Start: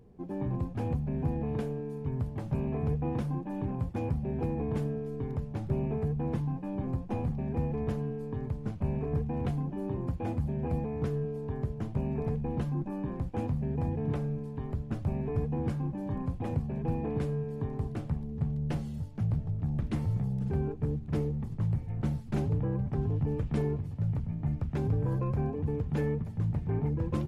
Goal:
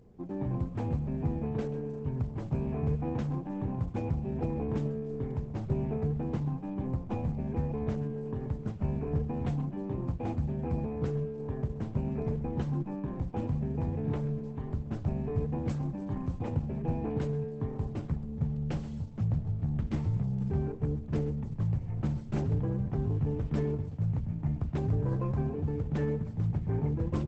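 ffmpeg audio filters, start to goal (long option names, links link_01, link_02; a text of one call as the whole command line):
ffmpeg -i in.wav -filter_complex "[0:a]asettb=1/sr,asplit=3[link_01][link_02][link_03];[link_01]atrim=end=15.584[link_04];[link_02]atrim=start=15.58:end=16.39,asetpts=PTS-STARTPTS,afade=type=in:duration=0.004:curve=qsin,afade=type=out:start_time=0.806:duration=0.004:curve=qsin,aemphasis=mode=production:type=cd[link_05];[link_03]atrim=start=16.386[link_06];[link_04][link_05]acrossfade=duration=0.004:curve1=hsin:curve2=qsin[link_07];[link_07][link_06]acrossfade=duration=0.004:curve1=qsin:curve2=hsin,asplit=2[link_08][link_09];[link_09]aecho=0:1:132|264|396:0.178|0.0427|0.0102[link_10];[link_08][link_10]amix=inputs=2:normalize=0" -ar 48000 -c:a libopus -b:a 12k out.opus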